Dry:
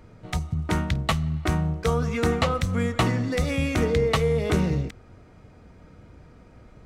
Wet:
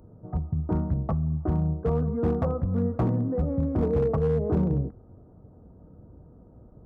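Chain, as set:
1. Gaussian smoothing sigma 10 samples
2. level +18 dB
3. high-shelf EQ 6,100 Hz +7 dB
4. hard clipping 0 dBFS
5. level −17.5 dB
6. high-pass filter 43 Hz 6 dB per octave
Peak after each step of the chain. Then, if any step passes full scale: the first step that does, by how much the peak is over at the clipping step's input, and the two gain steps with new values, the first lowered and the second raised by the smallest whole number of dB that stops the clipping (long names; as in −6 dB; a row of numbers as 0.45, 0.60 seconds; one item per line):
−12.0, +6.0, +6.0, 0.0, −17.5, −15.0 dBFS
step 2, 6.0 dB
step 2 +12 dB, step 5 −11.5 dB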